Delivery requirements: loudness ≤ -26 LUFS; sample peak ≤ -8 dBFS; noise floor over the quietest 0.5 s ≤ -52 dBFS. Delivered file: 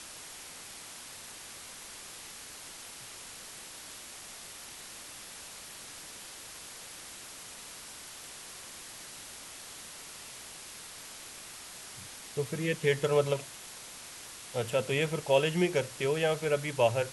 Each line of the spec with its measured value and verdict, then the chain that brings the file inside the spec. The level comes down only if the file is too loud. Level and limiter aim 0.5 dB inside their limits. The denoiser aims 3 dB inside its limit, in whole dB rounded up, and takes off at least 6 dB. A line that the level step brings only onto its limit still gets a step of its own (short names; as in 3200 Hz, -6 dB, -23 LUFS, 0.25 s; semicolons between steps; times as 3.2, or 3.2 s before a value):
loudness -35.5 LUFS: OK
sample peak -13.0 dBFS: OK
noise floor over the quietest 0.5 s -47 dBFS: fail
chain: denoiser 8 dB, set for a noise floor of -47 dBFS